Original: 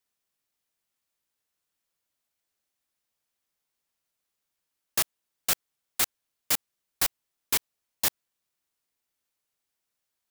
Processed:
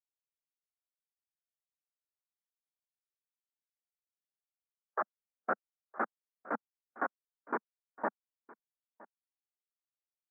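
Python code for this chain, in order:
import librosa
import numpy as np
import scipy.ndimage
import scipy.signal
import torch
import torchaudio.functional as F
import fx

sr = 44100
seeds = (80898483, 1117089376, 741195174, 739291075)

y = fx.ellip_bandpass(x, sr, low_hz=fx.steps((0.0, 410.0), (5.0, 210.0)), high_hz=1500.0, order=3, stop_db=40)
y = fx.rider(y, sr, range_db=5, speed_s=0.5)
y = y + 10.0 ** (-14.5 / 20.0) * np.pad(y, (int(964 * sr / 1000.0), 0))[:len(y)]
y = fx.spectral_expand(y, sr, expansion=1.5)
y = y * 10.0 ** (4.5 / 20.0)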